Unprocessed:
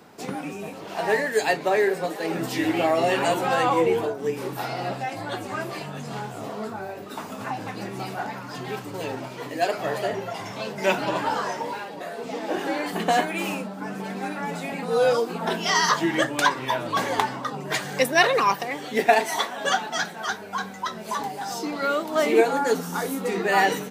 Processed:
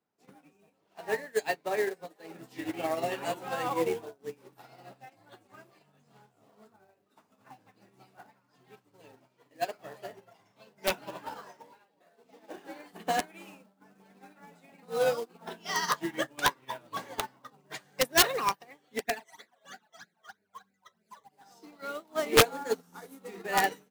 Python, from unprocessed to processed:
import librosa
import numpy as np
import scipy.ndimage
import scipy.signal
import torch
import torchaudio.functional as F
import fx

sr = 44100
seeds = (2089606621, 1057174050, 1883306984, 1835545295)

y = fx.phaser_stages(x, sr, stages=12, low_hz=250.0, high_hz=1100.0, hz=3.1, feedback_pct=20, at=(18.99, 21.31), fade=0.02)
y = (np.mod(10.0 ** (9.0 / 20.0) * y + 1.0, 2.0) - 1.0) / 10.0 ** (9.0 / 20.0)
y = fx.quant_float(y, sr, bits=2)
y = fx.upward_expand(y, sr, threshold_db=-37.0, expansion=2.5)